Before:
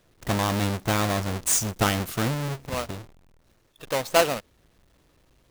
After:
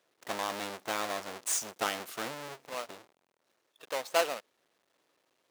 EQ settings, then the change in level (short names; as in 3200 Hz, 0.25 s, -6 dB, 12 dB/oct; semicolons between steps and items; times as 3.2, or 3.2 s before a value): HPF 430 Hz 12 dB/oct; high shelf 9800 Hz -4.5 dB; -7.0 dB